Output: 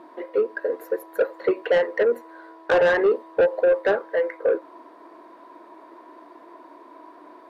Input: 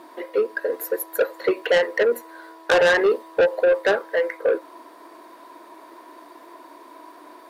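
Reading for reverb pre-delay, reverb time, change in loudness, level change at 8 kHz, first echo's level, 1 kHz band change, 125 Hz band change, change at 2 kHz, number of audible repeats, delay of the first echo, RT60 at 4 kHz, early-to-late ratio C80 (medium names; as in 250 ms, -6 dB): no reverb, no reverb, -1.0 dB, no reading, no echo, -2.0 dB, no reading, -4.5 dB, no echo, no echo, no reverb, no reverb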